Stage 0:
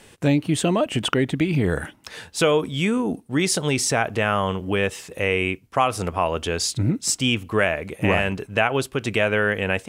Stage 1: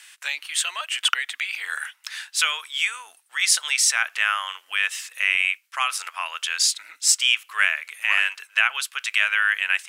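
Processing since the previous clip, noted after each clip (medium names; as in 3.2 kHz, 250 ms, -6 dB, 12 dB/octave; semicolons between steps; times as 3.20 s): high-pass 1.4 kHz 24 dB/octave; trim +5 dB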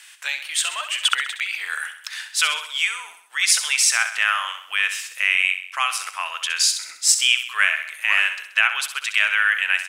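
feedback delay 65 ms, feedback 51%, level -10 dB; trim +1.5 dB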